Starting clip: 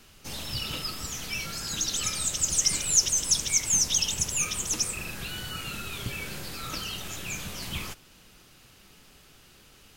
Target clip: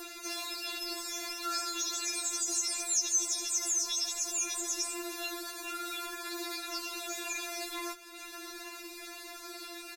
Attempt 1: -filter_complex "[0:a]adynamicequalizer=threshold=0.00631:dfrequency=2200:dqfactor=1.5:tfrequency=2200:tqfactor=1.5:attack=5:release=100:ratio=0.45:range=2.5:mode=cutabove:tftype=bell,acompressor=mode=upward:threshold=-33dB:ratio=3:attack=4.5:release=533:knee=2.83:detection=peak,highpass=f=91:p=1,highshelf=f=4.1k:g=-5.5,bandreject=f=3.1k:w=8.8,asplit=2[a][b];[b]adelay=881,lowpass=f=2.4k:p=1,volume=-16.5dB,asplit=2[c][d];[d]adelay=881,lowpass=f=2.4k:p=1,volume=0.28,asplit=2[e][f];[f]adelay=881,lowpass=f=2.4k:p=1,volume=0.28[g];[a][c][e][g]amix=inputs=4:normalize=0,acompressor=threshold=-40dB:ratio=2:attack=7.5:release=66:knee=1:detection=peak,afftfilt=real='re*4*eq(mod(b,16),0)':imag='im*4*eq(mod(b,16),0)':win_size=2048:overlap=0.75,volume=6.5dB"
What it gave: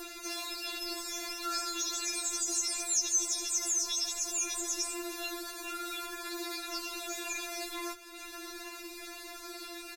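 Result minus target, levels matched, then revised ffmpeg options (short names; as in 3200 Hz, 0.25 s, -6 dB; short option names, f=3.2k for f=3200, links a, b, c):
125 Hz band +7.5 dB
-filter_complex "[0:a]adynamicequalizer=threshold=0.00631:dfrequency=2200:dqfactor=1.5:tfrequency=2200:tqfactor=1.5:attack=5:release=100:ratio=0.45:range=2.5:mode=cutabove:tftype=bell,acompressor=mode=upward:threshold=-33dB:ratio=3:attack=4.5:release=533:knee=2.83:detection=peak,highpass=f=250:p=1,highshelf=f=4.1k:g=-5.5,bandreject=f=3.1k:w=8.8,asplit=2[a][b];[b]adelay=881,lowpass=f=2.4k:p=1,volume=-16.5dB,asplit=2[c][d];[d]adelay=881,lowpass=f=2.4k:p=1,volume=0.28,asplit=2[e][f];[f]adelay=881,lowpass=f=2.4k:p=1,volume=0.28[g];[a][c][e][g]amix=inputs=4:normalize=0,acompressor=threshold=-40dB:ratio=2:attack=7.5:release=66:knee=1:detection=peak,afftfilt=real='re*4*eq(mod(b,16),0)':imag='im*4*eq(mod(b,16),0)':win_size=2048:overlap=0.75,volume=6.5dB"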